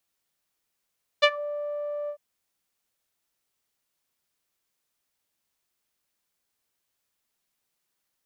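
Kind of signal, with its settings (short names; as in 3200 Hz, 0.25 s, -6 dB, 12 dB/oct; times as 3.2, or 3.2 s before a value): synth note saw D5 12 dB/oct, low-pass 720 Hz, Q 2.9, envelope 2.5 oct, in 0.17 s, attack 18 ms, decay 0.06 s, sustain -20.5 dB, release 0.08 s, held 0.87 s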